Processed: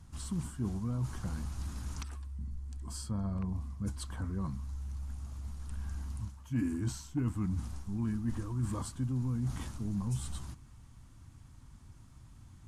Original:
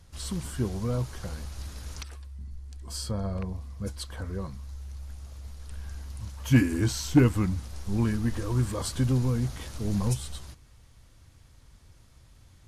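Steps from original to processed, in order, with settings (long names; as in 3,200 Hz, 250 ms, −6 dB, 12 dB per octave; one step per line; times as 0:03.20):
octave-band graphic EQ 125/250/500/1,000/2,000/4,000/8,000 Hz +4/+7/−11/+4/−5/−4/+8 dB
reversed playback
downward compressor 5 to 1, threshold −31 dBFS, peak gain reduction 19 dB
reversed playback
bass and treble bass −1 dB, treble −9 dB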